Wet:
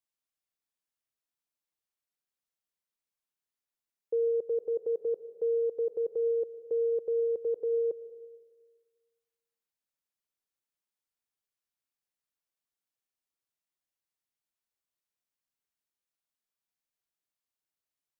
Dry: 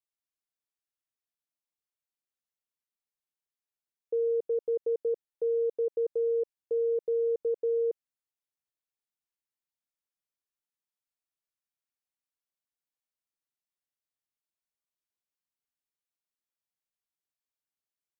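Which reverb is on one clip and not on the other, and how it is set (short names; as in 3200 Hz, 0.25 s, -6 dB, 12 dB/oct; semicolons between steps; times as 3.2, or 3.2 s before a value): digital reverb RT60 1.5 s, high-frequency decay 0.45×, pre-delay 65 ms, DRR 14 dB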